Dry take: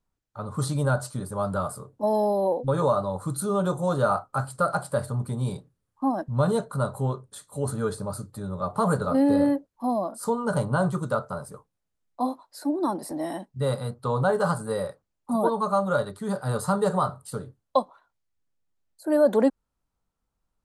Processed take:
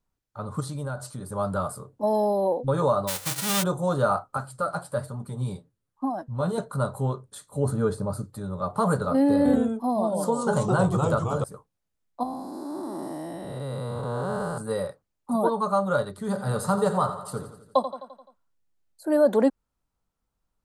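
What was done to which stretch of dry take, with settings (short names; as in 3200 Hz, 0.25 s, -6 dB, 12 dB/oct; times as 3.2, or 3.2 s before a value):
0.6–1.31 compressor 2:1, threshold -35 dBFS
3.07–3.62 spectral whitening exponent 0.1
4.37–6.58 flange 1.2 Hz, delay 3.7 ms, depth 8.6 ms, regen +36%
7.49–8.24 tilt shelf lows +4 dB, about 1100 Hz
9.37–11.44 echoes that change speed 81 ms, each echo -2 st, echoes 2
12.23–14.58 time blur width 0.43 s
16.09–19.08 feedback echo 86 ms, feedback 57%, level -11 dB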